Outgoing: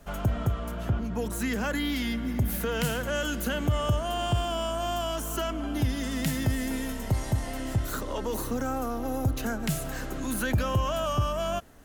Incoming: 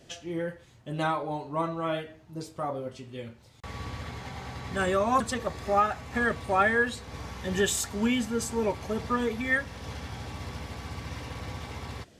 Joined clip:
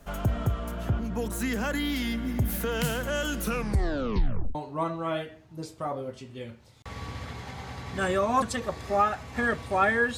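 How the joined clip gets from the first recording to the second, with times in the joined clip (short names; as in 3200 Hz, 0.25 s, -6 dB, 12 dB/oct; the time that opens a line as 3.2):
outgoing
3.36 tape stop 1.19 s
4.55 switch to incoming from 1.33 s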